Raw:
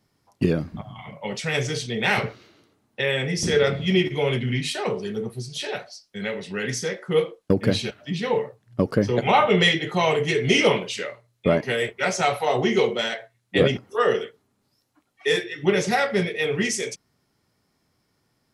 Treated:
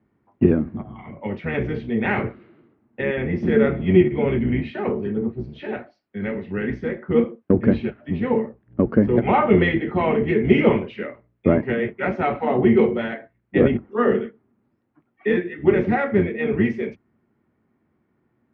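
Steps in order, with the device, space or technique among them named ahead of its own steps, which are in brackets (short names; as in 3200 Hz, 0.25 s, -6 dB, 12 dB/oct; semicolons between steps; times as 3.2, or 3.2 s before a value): sub-octave bass pedal (octaver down 1 oct, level -1 dB; speaker cabinet 66–2200 Hz, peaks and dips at 78 Hz -5 dB, 230 Hz +10 dB, 350 Hz +8 dB); gain -1 dB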